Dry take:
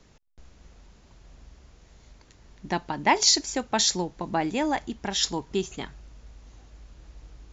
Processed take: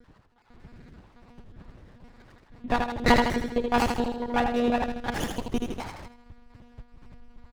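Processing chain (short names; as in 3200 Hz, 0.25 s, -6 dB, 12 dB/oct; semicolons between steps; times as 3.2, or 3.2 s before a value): random spectral dropouts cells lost 37%; on a send: feedback echo 77 ms, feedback 53%, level -4 dB; on the sum: monotone LPC vocoder at 8 kHz 240 Hz; running maximum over 9 samples; gain +4.5 dB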